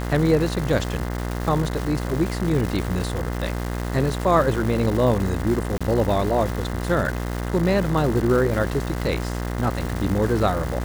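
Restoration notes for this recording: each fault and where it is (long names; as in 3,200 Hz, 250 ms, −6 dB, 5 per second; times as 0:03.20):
mains buzz 60 Hz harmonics 35 −27 dBFS
surface crackle 550 per second −27 dBFS
0:05.78–0:05.81: drop-out 26 ms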